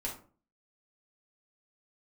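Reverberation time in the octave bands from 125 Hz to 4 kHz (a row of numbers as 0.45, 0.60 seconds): 0.50, 0.50, 0.45, 0.40, 0.30, 0.25 seconds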